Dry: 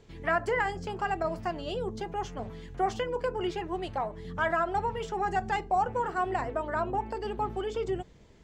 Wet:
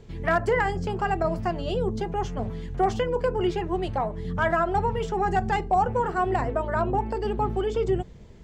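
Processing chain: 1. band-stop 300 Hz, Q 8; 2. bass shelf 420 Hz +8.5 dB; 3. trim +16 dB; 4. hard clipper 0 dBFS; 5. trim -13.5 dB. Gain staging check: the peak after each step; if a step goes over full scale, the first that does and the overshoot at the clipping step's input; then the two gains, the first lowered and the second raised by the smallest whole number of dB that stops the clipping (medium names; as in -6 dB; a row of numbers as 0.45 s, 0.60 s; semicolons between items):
-16.0 dBFS, -13.0 dBFS, +3.0 dBFS, 0.0 dBFS, -13.5 dBFS; step 3, 3.0 dB; step 3 +13 dB, step 5 -10.5 dB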